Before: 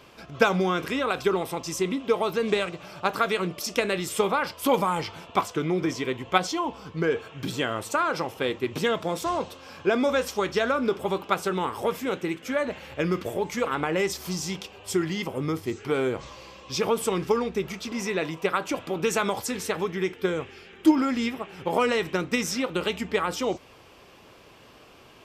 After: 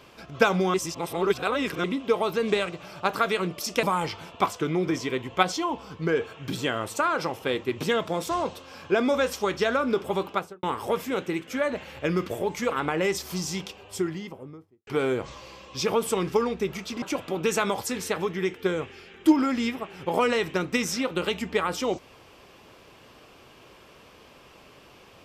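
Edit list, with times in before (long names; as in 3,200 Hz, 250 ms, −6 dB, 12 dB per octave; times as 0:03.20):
0:00.74–0:01.84: reverse
0:03.83–0:04.78: remove
0:11.22–0:11.58: fade out and dull
0:14.56–0:15.82: fade out and dull
0:17.97–0:18.61: remove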